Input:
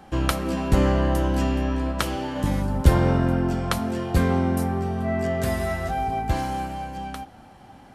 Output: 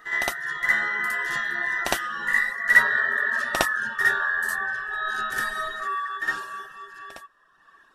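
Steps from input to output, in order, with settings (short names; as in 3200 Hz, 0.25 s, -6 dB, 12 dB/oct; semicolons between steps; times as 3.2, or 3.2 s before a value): band inversion scrambler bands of 2000 Hz; Doppler pass-by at 3.24, 16 m/s, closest 20 m; reverb removal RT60 1.2 s; reverse echo 60 ms -5.5 dB; vocal rider within 3 dB 0.5 s; gain +2 dB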